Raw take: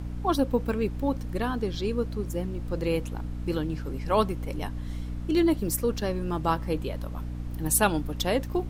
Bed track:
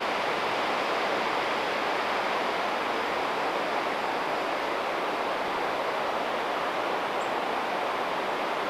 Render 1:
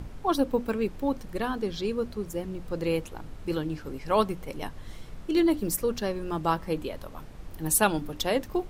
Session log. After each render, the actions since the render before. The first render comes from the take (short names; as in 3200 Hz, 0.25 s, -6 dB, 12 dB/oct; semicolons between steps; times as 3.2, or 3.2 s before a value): notches 60/120/180/240/300 Hz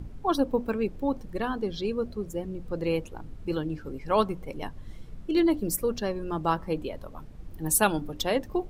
denoiser 9 dB, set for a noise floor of -44 dBFS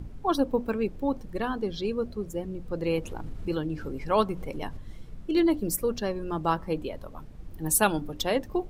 2.98–4.77 upward compressor, threshold -27 dBFS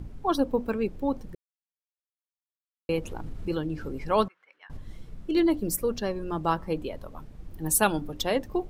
1.35–2.89 mute; 4.28–4.7 ladder band-pass 1800 Hz, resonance 55%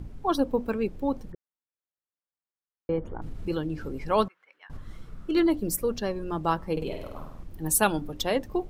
1.32–3.22 polynomial smoothing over 41 samples; 4.73–5.47 bell 1300 Hz +11 dB 0.57 oct; 6.72–7.44 flutter echo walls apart 8.6 m, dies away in 0.76 s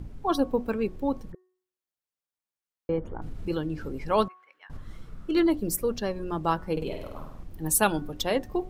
de-hum 368.2 Hz, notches 5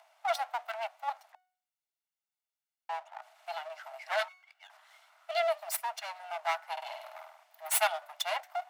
minimum comb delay 1.4 ms; rippled Chebyshev high-pass 630 Hz, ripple 3 dB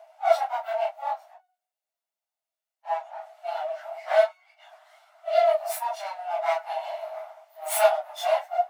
phase scrambler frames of 0.1 s; resonant high-pass 630 Hz, resonance Q 4.9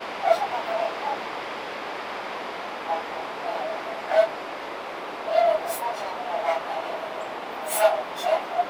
add bed track -5 dB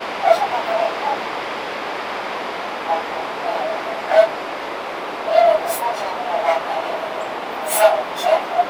gain +7 dB; limiter -1 dBFS, peak gain reduction 1 dB